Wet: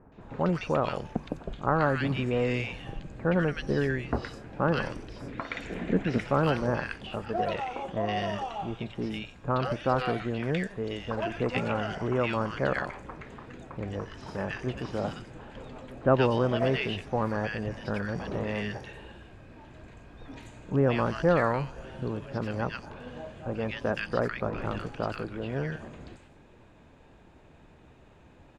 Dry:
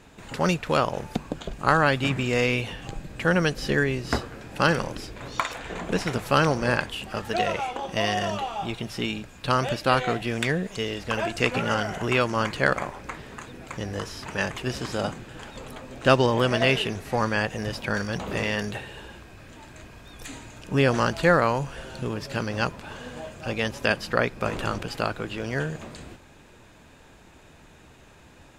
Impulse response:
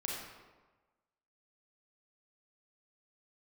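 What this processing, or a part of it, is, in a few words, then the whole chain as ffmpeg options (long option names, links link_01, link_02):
through cloth: -filter_complex "[0:a]asettb=1/sr,asplit=3[link_01][link_02][link_03];[link_01]atrim=end=5.214[link_04];[link_02]atrim=start=5.21:end=6.26,asetpts=PTS-STARTPTS,afade=type=in:duration=0.004:curve=qsin,afade=type=out:start_time=1.046:duration=0.004:curve=qsin,equalizer=frequency=250:width_type=o:width=1:gain=7,equalizer=frequency=1000:width_type=o:width=1:gain=-8,equalizer=frequency=2000:width_type=o:width=1:gain=7[link_05];[link_03]atrim=start=6.256[link_06];[link_04][link_05]acrossfade=duration=0.004:curve1=hsin:curve2=qsin[link_07];[link_07][link_06]acrossfade=duration=0.004:curve1=qsin:curve2=hsin,lowpass=9100,highshelf=frequency=3000:gain=-12,acrossover=split=1500|5900[link_08][link_09][link_10];[link_09]adelay=120[link_11];[link_10]adelay=210[link_12];[link_08][link_11][link_12]amix=inputs=3:normalize=0,volume=-2.5dB"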